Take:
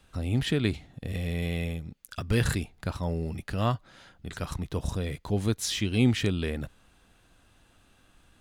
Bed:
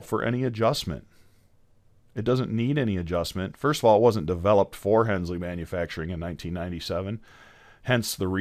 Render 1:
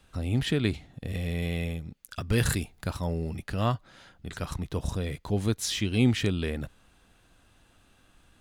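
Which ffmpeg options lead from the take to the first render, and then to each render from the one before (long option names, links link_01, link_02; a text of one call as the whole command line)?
ffmpeg -i in.wav -filter_complex "[0:a]asettb=1/sr,asplit=3[link_01][link_02][link_03];[link_01]atrim=end=2.384[link_04];[link_02]atrim=start=2.38:end=3.07,asetpts=PTS-STARTPTS,afade=type=in:duration=0.004:curve=qsin,afade=type=out:start_time=0.686:duration=0.004:curve=qsin,highshelf=frequency=7000:gain=8[link_05];[link_03]atrim=start=3.066[link_06];[link_04][link_05]acrossfade=duration=0.004:curve1=hsin:curve2=qsin[link_07];[link_07][link_06]acrossfade=duration=0.004:curve1=qsin:curve2=hsin" out.wav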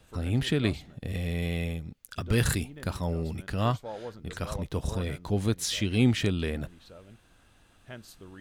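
ffmpeg -i in.wav -i bed.wav -filter_complex "[1:a]volume=-21dB[link_01];[0:a][link_01]amix=inputs=2:normalize=0" out.wav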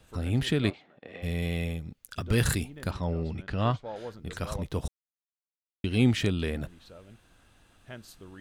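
ffmpeg -i in.wav -filter_complex "[0:a]asplit=3[link_01][link_02][link_03];[link_01]afade=type=out:start_time=0.69:duration=0.02[link_04];[link_02]highpass=460,lowpass=2200,afade=type=in:start_time=0.69:duration=0.02,afade=type=out:start_time=1.22:duration=0.02[link_05];[link_03]afade=type=in:start_time=1.22:duration=0.02[link_06];[link_04][link_05][link_06]amix=inputs=3:normalize=0,asettb=1/sr,asplit=3[link_07][link_08][link_09];[link_07]atrim=end=2.914[link_10];[link_08]atrim=start=2.91:end=3.96,asetpts=PTS-STARTPTS,afade=type=in:duration=0.004:curve=qsin,afade=type=out:start_time=1.046:duration=0.004:curve=qsin,lowpass=4300[link_11];[link_09]atrim=start=3.956[link_12];[link_10][link_11]acrossfade=duration=0.004:curve1=hsin:curve2=qsin[link_13];[link_13][link_12]acrossfade=duration=0.004:curve1=qsin:curve2=hsin,asplit=3[link_14][link_15][link_16];[link_14]atrim=end=4.88,asetpts=PTS-STARTPTS,afade=type=out:start_time=4.876:duration=0.004:curve=hsin[link_17];[link_15]atrim=start=4.88:end=5.84,asetpts=PTS-STARTPTS,volume=0[link_18];[link_16]atrim=start=5.84,asetpts=PTS-STARTPTS,afade=type=in:duration=0.004:curve=hsin[link_19];[link_17][link_18][link_19]concat=n=3:v=0:a=1" out.wav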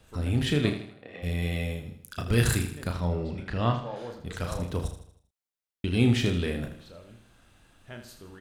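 ffmpeg -i in.wav -filter_complex "[0:a]asplit=2[link_01][link_02];[link_02]adelay=34,volume=-7dB[link_03];[link_01][link_03]amix=inputs=2:normalize=0,aecho=1:1:79|158|237|316|395:0.316|0.139|0.0612|0.0269|0.0119" out.wav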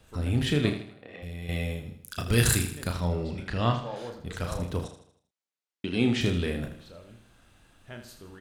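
ffmpeg -i in.wav -filter_complex "[0:a]asettb=1/sr,asplit=3[link_01][link_02][link_03];[link_01]atrim=end=0.824[link_04];[link_02]atrim=start=0.82:end=1.49,asetpts=PTS-STARTPTS,afade=type=in:duration=0.004:curve=qsin,afade=type=out:start_time=0.666:duration=0.004:curve=qsin,acompressor=threshold=-39dB:ratio=2.5:attack=3.2:release=140:knee=1:detection=peak[link_05];[link_03]atrim=start=1.486[link_06];[link_04][link_05]acrossfade=duration=0.004:curve1=hsin:curve2=qsin[link_07];[link_07][link_06]acrossfade=duration=0.004:curve1=qsin:curve2=hsin,asettb=1/sr,asplit=3[link_08][link_09][link_10];[link_08]atrim=end=2.074[link_11];[link_09]atrim=start=2.07:end=4.1,asetpts=PTS-STARTPTS,afade=type=in:duration=0.004:curve=qsin,afade=type=out:start_time=2.026:duration=0.004:curve=qsin,highshelf=frequency=3300:gain=7[link_12];[link_10]atrim=start=4.096[link_13];[link_11][link_12]acrossfade=duration=0.004:curve1=hsin:curve2=qsin[link_14];[link_14][link_13]acrossfade=duration=0.004:curve1=qsin:curve2=hsin,asettb=1/sr,asplit=3[link_15][link_16][link_17];[link_15]atrim=end=4.844[link_18];[link_16]atrim=start=4.84:end=6.21,asetpts=PTS-STARTPTS,afade=type=in:duration=0.004:curve=qsin,afade=type=out:start_time=1.366:duration=0.004:curve=qsin,highpass=180,lowpass=7400[link_19];[link_17]atrim=start=6.206[link_20];[link_18][link_19]acrossfade=duration=0.004:curve1=hsin:curve2=qsin[link_21];[link_21][link_20]acrossfade=duration=0.004:curve1=qsin:curve2=hsin" out.wav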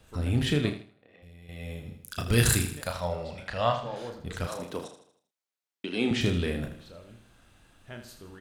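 ffmpeg -i in.wav -filter_complex "[0:a]asettb=1/sr,asplit=3[link_01][link_02][link_03];[link_01]atrim=end=2.804[link_04];[link_02]atrim=start=2.8:end=3.83,asetpts=PTS-STARTPTS,afade=type=in:duration=0.004:curve=qsin,afade=type=out:start_time=1.026:duration=0.004:curve=qsin,lowshelf=frequency=460:width_type=q:width=3:gain=-7.5[link_05];[link_03]atrim=start=3.826[link_06];[link_04][link_05]acrossfade=duration=0.004:curve1=hsin:curve2=qsin[link_07];[link_07][link_06]acrossfade=duration=0.004:curve1=qsin:curve2=hsin,asettb=1/sr,asplit=3[link_08][link_09][link_10];[link_08]atrim=end=4.474[link_11];[link_09]atrim=start=4.47:end=6.11,asetpts=PTS-STARTPTS,afade=type=in:duration=0.004:curve=qsin,afade=type=out:start_time=1.636:duration=0.004:curve=qsin,highpass=270[link_12];[link_10]atrim=start=6.106[link_13];[link_11][link_12]acrossfade=duration=0.004:curve1=hsin:curve2=qsin[link_14];[link_14][link_13]acrossfade=duration=0.004:curve1=qsin:curve2=hsin,asplit=3[link_15][link_16][link_17];[link_15]atrim=end=0.92,asetpts=PTS-STARTPTS,afade=type=out:start_time=0.53:duration=0.39:silence=0.237137[link_18];[link_16]atrim=start=0.92:end=1.56,asetpts=PTS-STARTPTS,volume=-12.5dB[link_19];[link_17]atrim=start=1.56,asetpts=PTS-STARTPTS,afade=type=in:duration=0.39:silence=0.237137[link_20];[link_18][link_19][link_20]concat=n=3:v=0:a=1" out.wav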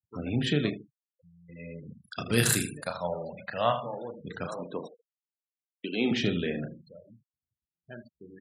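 ffmpeg -i in.wav -af "afftfilt=real='re*gte(hypot(re,im),0.0141)':imag='im*gte(hypot(re,im),0.0141)':win_size=1024:overlap=0.75,highpass=frequency=130:width=0.5412,highpass=frequency=130:width=1.3066" out.wav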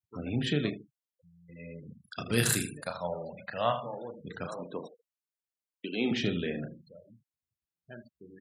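ffmpeg -i in.wav -af "volume=-2.5dB" out.wav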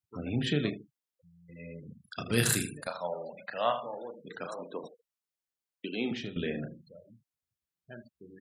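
ffmpeg -i in.wav -filter_complex "[0:a]asettb=1/sr,asplit=3[link_01][link_02][link_03];[link_01]atrim=end=2.874[link_04];[link_02]atrim=start=2.87:end=4.84,asetpts=PTS-STARTPTS,afade=type=in:duration=0.004:curve=qsin,afade=type=out:start_time=1.966:duration=0.004:curve=qsin,highpass=260[link_05];[link_03]atrim=start=4.836[link_06];[link_04][link_05]acrossfade=duration=0.004:curve1=hsin:curve2=qsin[link_07];[link_07][link_06]acrossfade=duration=0.004:curve1=qsin:curve2=hsin,asplit=2[link_08][link_09];[link_08]atrim=end=6.36,asetpts=PTS-STARTPTS,afade=type=out:start_time=5.87:duration=0.49:silence=0.16788[link_10];[link_09]atrim=start=6.36,asetpts=PTS-STARTPTS,afade=type=in:duration=0.004:curve=hsin:silence=0.16788[link_11];[link_10][link_11]concat=n=2:v=0:a=1" out.wav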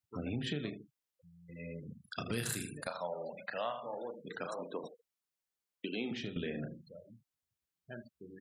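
ffmpeg -i in.wav -af "acompressor=threshold=-35dB:ratio=4" out.wav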